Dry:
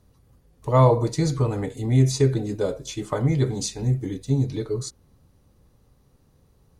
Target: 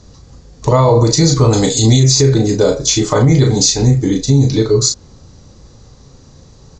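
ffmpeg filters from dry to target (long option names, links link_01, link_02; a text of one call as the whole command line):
ffmpeg -i in.wav -filter_complex "[0:a]asettb=1/sr,asplit=3[link_01][link_02][link_03];[link_01]atrim=end=1.534[link_04];[link_02]atrim=start=1.53:end=2,asetpts=PTS-STARTPTS,afade=type=in:duration=0.004:curve=qsin,afade=type=out:start_time=0.466:duration=0.004:curve=qsin,highshelf=frequency=2800:width_type=q:width=1.5:gain=12.5[link_05];[link_03]atrim=start=1.996[link_06];[link_04][link_05]acrossfade=duration=0.004:curve1=hsin:curve2=qsin[link_07];[link_07][link_06]acrossfade=duration=0.004:curve1=qsin:curve2=hsin,asplit=2[link_08][link_09];[link_09]acompressor=threshold=-32dB:ratio=6,volume=-1.5dB[link_10];[link_08][link_10]amix=inputs=2:normalize=0,aexciter=amount=1.8:drive=8.7:freq=4000,aresample=16000,aresample=44100,asplit=2[link_11][link_12];[link_12]adelay=36,volume=-6dB[link_13];[link_11][link_13]amix=inputs=2:normalize=0,alimiter=level_in=12.5dB:limit=-1dB:release=50:level=0:latency=1,volume=-1dB" out.wav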